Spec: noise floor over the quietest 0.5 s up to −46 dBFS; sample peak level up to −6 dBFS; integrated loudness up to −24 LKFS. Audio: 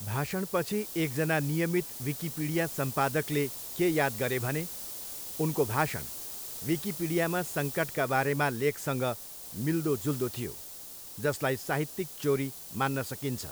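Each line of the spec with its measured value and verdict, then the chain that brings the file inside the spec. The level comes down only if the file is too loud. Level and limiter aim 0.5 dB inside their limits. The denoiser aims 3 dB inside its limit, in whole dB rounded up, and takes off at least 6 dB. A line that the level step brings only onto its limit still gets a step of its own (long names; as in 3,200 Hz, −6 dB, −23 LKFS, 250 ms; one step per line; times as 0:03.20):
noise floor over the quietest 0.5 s −45 dBFS: out of spec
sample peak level −12.0 dBFS: in spec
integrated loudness −30.5 LKFS: in spec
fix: broadband denoise 6 dB, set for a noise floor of −45 dBFS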